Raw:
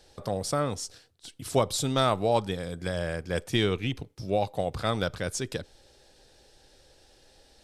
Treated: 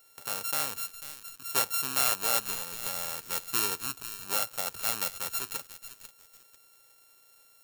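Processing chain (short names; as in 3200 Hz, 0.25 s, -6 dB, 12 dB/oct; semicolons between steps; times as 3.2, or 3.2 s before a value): sample sorter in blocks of 32 samples; RIAA curve recording; lo-fi delay 0.493 s, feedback 35%, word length 4-bit, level -11 dB; gain -8.5 dB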